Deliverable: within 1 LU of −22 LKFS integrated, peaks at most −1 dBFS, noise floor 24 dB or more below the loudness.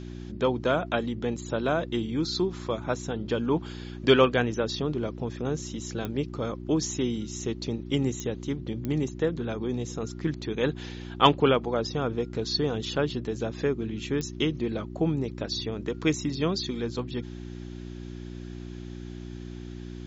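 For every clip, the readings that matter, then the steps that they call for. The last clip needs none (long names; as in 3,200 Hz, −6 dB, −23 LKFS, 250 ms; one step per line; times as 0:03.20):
number of clicks 4; mains hum 60 Hz; hum harmonics up to 360 Hz; level of the hum −36 dBFS; integrated loudness −28.5 LKFS; sample peak −4.5 dBFS; target loudness −22.0 LKFS
→ click removal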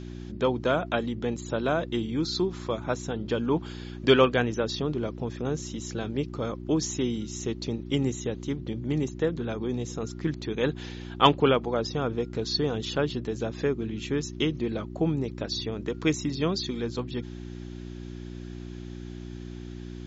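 number of clicks 0; mains hum 60 Hz; hum harmonics up to 360 Hz; level of the hum −36 dBFS
→ hum removal 60 Hz, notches 6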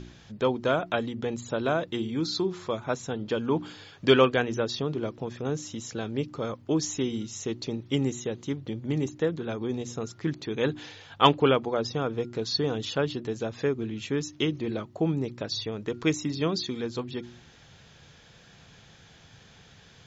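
mains hum none found; integrated loudness −29.0 LKFS; sample peak −4.5 dBFS; target loudness −22.0 LKFS
→ level +7 dB
brickwall limiter −1 dBFS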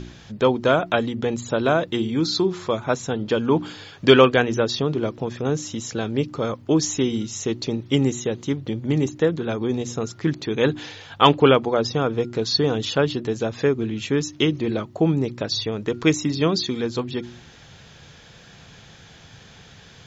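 integrated loudness −22.0 LKFS; sample peak −1.0 dBFS; background noise floor −47 dBFS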